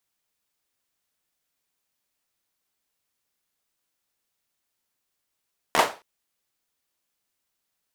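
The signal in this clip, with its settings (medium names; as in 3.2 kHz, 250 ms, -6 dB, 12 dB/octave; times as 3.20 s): hand clap length 0.27 s, bursts 4, apart 13 ms, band 740 Hz, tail 0.30 s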